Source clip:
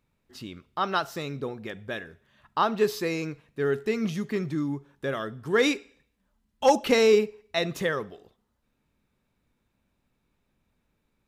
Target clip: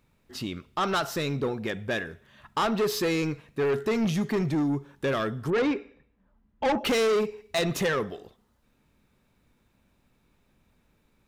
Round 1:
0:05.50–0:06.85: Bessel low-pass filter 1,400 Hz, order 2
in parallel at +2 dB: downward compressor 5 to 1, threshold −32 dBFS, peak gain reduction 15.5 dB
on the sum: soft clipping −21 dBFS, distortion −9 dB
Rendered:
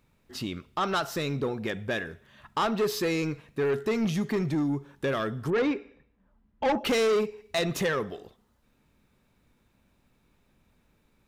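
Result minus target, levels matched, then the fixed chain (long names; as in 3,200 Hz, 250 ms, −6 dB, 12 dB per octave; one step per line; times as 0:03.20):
downward compressor: peak gain reduction +7 dB
0:05.50–0:06.85: Bessel low-pass filter 1,400 Hz, order 2
in parallel at +2 dB: downward compressor 5 to 1, threshold −23.5 dBFS, peak gain reduction 8.5 dB
on the sum: soft clipping −21 dBFS, distortion −7 dB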